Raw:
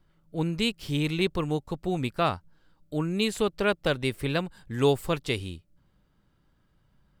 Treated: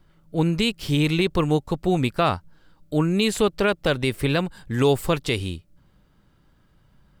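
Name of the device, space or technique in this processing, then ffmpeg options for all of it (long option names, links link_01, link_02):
clipper into limiter: -af "asoftclip=type=hard:threshold=-11dB,alimiter=limit=-16dB:level=0:latency=1:release=64,volume=7.5dB"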